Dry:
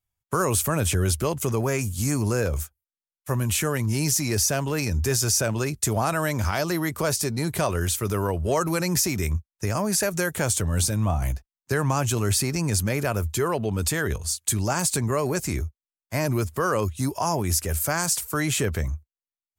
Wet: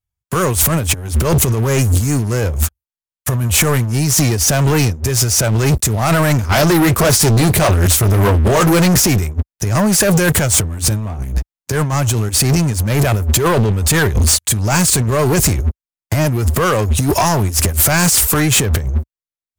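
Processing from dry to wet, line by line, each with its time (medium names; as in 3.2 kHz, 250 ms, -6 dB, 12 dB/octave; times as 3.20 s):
6.48–9.01 s: flange 1.6 Hz, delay 2.7 ms, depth 7.9 ms, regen -56%
whole clip: peaking EQ 60 Hz +9 dB 2.5 oct; compressor with a negative ratio -26 dBFS, ratio -0.5; waveshaping leveller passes 5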